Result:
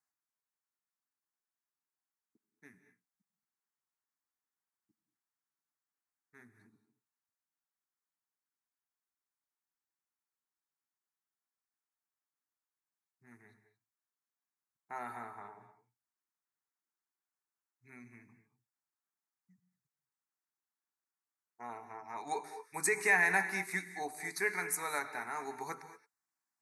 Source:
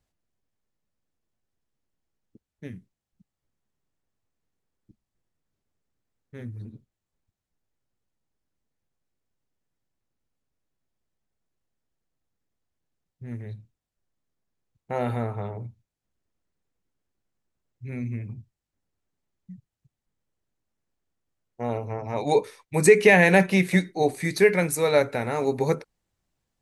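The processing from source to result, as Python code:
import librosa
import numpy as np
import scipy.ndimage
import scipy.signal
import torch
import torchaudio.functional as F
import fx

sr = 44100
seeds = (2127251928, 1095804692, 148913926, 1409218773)

y = scipy.signal.sosfilt(scipy.signal.butter(2, 550.0, 'highpass', fs=sr, output='sos'), x)
y = fx.fixed_phaser(y, sr, hz=1300.0, stages=4)
y = fx.rev_gated(y, sr, seeds[0], gate_ms=250, shape='rising', drr_db=10.5)
y = F.gain(torch.from_numpy(y), -5.0).numpy()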